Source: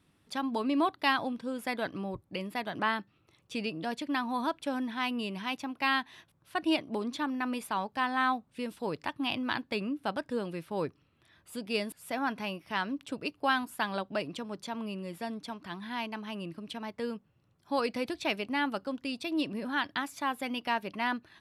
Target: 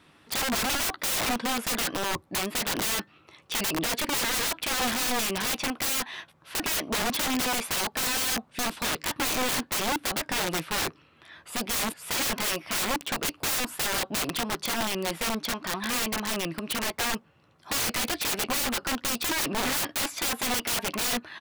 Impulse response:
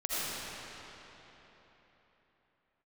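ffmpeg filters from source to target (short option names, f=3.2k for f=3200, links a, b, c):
-filter_complex "[0:a]asplit=2[a][b];[b]highpass=f=720:p=1,volume=14dB,asoftclip=type=tanh:threshold=-12.5dB[c];[a][c]amix=inputs=2:normalize=0,lowpass=f=2.9k:p=1,volume=-6dB,asplit=2[d][e];[e]adelay=13,volume=-11dB[f];[d][f]amix=inputs=2:normalize=0,aeval=exprs='(mod(31.6*val(0)+1,2)-1)/31.6':c=same,volume=7.5dB"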